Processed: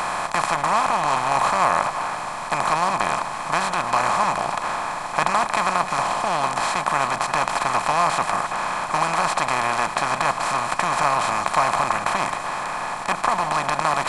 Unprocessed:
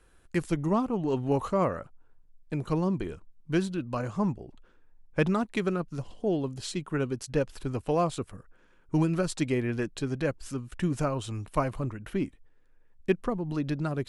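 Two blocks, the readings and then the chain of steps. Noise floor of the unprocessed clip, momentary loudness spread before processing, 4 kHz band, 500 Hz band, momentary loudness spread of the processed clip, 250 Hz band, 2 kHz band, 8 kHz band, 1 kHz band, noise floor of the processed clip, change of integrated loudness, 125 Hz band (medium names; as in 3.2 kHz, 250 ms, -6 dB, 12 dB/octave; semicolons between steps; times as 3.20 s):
-60 dBFS, 9 LU, +14.5 dB, +3.5 dB, 6 LU, -6.0 dB, +16.5 dB, +15.0 dB, +19.0 dB, -30 dBFS, +8.5 dB, -5.0 dB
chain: spectral levelling over time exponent 0.2; resonant low shelf 590 Hz -12.5 dB, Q 3; two-band feedback delay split 920 Hz, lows 163 ms, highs 336 ms, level -13 dB; trim +1 dB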